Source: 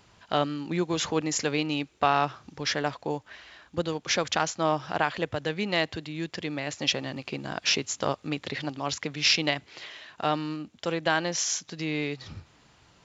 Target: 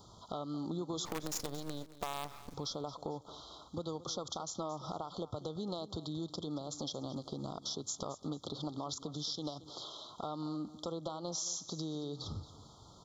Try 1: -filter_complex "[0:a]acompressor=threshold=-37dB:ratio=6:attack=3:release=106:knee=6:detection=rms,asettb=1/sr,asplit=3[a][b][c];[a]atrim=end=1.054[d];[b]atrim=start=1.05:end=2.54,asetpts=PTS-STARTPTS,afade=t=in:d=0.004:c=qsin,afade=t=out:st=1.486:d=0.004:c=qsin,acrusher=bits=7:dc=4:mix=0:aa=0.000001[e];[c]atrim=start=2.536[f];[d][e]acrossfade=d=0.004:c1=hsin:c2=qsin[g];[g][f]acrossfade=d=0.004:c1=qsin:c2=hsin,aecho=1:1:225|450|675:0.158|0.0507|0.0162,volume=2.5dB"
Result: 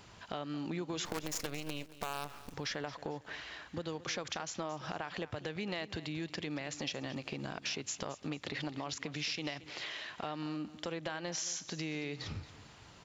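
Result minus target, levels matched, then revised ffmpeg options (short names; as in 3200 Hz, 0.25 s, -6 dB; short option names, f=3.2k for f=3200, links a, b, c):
2000 Hz band +15.0 dB
-filter_complex "[0:a]acompressor=threshold=-37dB:ratio=6:attack=3:release=106:knee=6:detection=rms,asuperstop=centerf=2100:order=20:qfactor=1.1,asettb=1/sr,asplit=3[a][b][c];[a]atrim=end=1.054[d];[b]atrim=start=1.05:end=2.54,asetpts=PTS-STARTPTS,afade=t=in:d=0.004:c=qsin,afade=t=out:st=1.486:d=0.004:c=qsin,acrusher=bits=7:dc=4:mix=0:aa=0.000001[e];[c]atrim=start=2.536[f];[d][e]acrossfade=d=0.004:c1=hsin:c2=qsin[g];[g][f]acrossfade=d=0.004:c1=qsin:c2=hsin,aecho=1:1:225|450|675:0.158|0.0507|0.0162,volume=2.5dB"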